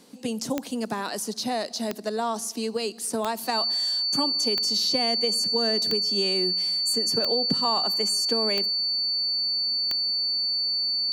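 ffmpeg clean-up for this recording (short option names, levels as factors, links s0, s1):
-af "adeclick=t=4,bandreject=f=4500:w=30"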